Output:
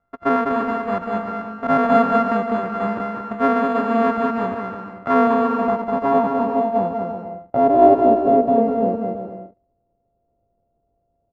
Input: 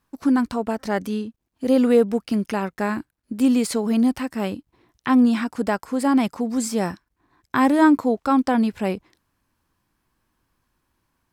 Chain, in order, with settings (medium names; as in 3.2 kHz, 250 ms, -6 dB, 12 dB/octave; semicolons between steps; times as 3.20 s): sorted samples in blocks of 64 samples; treble shelf 9.2 kHz +5.5 dB; on a send: bouncing-ball echo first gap 200 ms, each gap 0.7×, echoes 5; on the sum: low-pass sweep 1.3 kHz -> 580 Hz, 4.83–8.48 s; trim -2 dB